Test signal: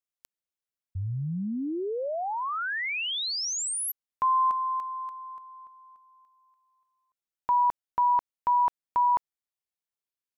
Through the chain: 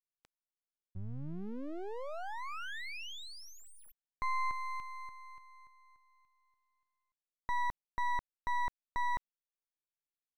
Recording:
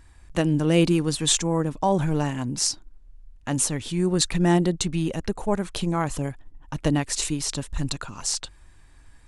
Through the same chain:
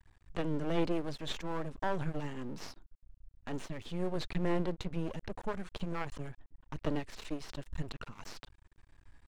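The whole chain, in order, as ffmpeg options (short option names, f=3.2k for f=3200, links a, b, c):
-filter_complex "[0:a]aemphasis=mode=reproduction:type=50fm,aeval=exprs='max(val(0),0)':c=same,acrossover=split=4700[a][b];[b]acompressor=threshold=-53dB:ratio=4:attack=1:release=60[c];[a][c]amix=inputs=2:normalize=0,volume=-6.5dB"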